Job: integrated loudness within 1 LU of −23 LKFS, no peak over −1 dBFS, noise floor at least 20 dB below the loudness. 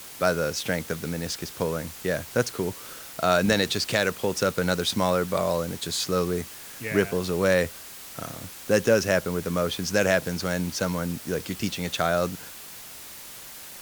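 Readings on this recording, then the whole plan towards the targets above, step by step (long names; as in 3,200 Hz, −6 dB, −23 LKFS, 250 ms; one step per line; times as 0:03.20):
background noise floor −42 dBFS; target noise floor −46 dBFS; integrated loudness −26.0 LKFS; sample peak −7.5 dBFS; target loudness −23.0 LKFS
→ broadband denoise 6 dB, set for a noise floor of −42 dBFS
level +3 dB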